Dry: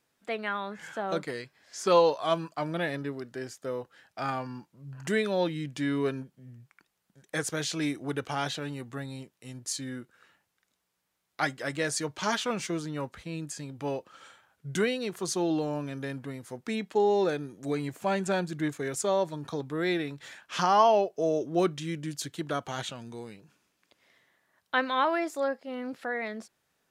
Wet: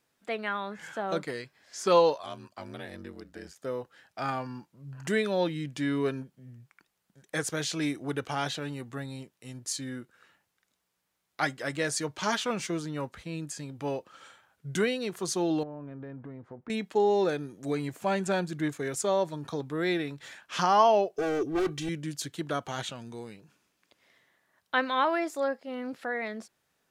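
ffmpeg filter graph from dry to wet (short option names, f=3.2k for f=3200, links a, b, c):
-filter_complex "[0:a]asettb=1/sr,asplit=3[a][b][c];[a]atrim=end=2.174[d];[b]atrim=start=2.17:end=3.56,asetpts=PTS-STARTPTS,afade=t=in:d=0.004:c=qsin,afade=t=out:st=1.386:d=0.004:c=qsin,acrossover=split=150|1700|4000[e][f][g][h];[e]acompressor=threshold=-49dB:ratio=3[i];[f]acompressor=threshold=-40dB:ratio=3[j];[g]acompressor=threshold=-50dB:ratio=3[k];[h]acompressor=threshold=-53dB:ratio=3[l];[i][j][k][l]amix=inputs=4:normalize=0,aeval=exprs='val(0)*sin(2*PI*47*n/s)':c=same[m];[c]atrim=start=3.556[n];[d][m]acrossfade=d=0.004:c1=hsin:c2=qsin[o];[o][n]acrossfade=d=0.004:c1=qsin:c2=hsin,asettb=1/sr,asplit=3[p][q][r];[p]atrim=end=15.634[s];[q]atrim=start=15.63:end=16.7,asetpts=PTS-STARTPTS,afade=t=in:d=0.004:c=qsin,afade=t=out:st=1.066:d=0.004:c=qsin,lowpass=1.2k,acompressor=threshold=-38dB:ratio=4:attack=3.2:release=140:knee=1:detection=peak[t];[r]atrim=start=16.696[u];[s][t]acrossfade=d=0.004:c1=hsin:c2=qsin[v];[v][u]acrossfade=d=0.004:c1=qsin:c2=hsin,asettb=1/sr,asplit=3[w][x][y];[w]atrim=end=21.164[z];[x]atrim=start=21.16:end=21.89,asetpts=PTS-STARTPTS,afade=t=in:d=0.004:c=qsin,afade=t=out:st=0.726:d=0.004:c=qsin,lowshelf=f=270:g=5.5,asoftclip=type=hard:threshold=-28.5dB,aecho=1:1:2.6:0.83,atrim=end_sample=32193[aa];[y]atrim=start=21.886[ab];[z][aa]acrossfade=d=0.004:c1=hsin:c2=qsin[ac];[ac][ab]acrossfade=d=0.004:c1=qsin:c2=hsin"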